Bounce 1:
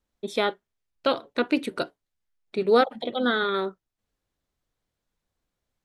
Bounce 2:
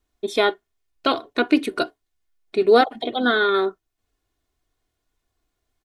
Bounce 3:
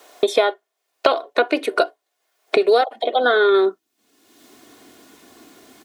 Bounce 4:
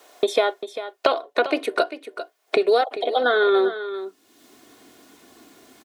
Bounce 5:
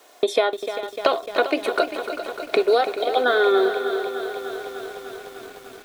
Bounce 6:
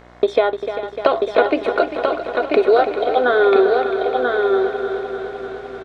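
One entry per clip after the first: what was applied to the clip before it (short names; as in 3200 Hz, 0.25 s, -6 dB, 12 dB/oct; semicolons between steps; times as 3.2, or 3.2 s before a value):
comb 2.8 ms, depth 58%; gain +4 dB
high-pass sweep 560 Hz -> 250 Hz, 3.26–3.79; three-band squash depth 100%
echo 0.396 s -12 dB; gain -3 dB
lo-fi delay 0.3 s, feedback 80%, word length 7-bit, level -10 dB
tape spacing loss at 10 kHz 26 dB; echo 0.988 s -4 dB; buzz 60 Hz, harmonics 37, -52 dBFS -3 dB/oct; gain +5.5 dB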